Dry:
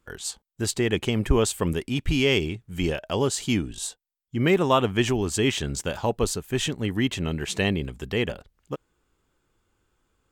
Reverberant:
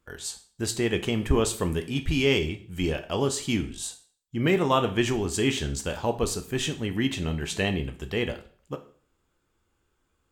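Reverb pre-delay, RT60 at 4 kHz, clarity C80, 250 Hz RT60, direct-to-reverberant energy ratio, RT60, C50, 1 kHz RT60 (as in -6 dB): 5 ms, 0.45 s, 17.5 dB, 0.45 s, 6.5 dB, 0.50 s, 13.5 dB, 0.45 s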